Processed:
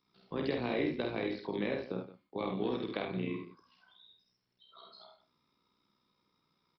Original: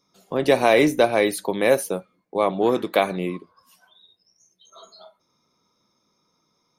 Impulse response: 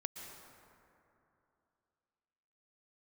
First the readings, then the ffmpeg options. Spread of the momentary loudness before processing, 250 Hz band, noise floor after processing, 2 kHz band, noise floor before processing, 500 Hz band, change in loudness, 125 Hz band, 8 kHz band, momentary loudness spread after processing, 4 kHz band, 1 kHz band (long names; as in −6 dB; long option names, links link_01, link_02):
13 LU, −11.0 dB, −80 dBFS, −16.0 dB, −70 dBFS, −16.5 dB, −15.0 dB, −8.5 dB, below −40 dB, 13 LU, −14.0 dB, −18.5 dB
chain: -filter_complex "[0:a]equalizer=frequency=610:width_type=o:width=0.72:gain=-8,acrossover=split=450|2300[link_01][link_02][link_03];[link_01]acompressor=threshold=-26dB:ratio=4[link_04];[link_02]acompressor=threshold=-35dB:ratio=4[link_05];[link_03]acompressor=threshold=-40dB:ratio=4[link_06];[link_04][link_05][link_06]amix=inputs=3:normalize=0,acrusher=bits=11:mix=0:aa=0.000001,tremolo=f=61:d=0.667,aecho=1:1:49|74|170:0.631|0.447|0.178,aresample=11025,aresample=44100,volume=-5dB"